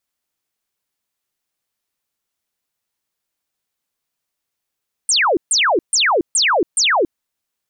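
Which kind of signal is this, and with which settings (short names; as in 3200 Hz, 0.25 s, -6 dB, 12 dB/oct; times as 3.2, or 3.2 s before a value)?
burst of laser zaps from 9300 Hz, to 300 Hz, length 0.28 s sine, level -12 dB, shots 5, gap 0.14 s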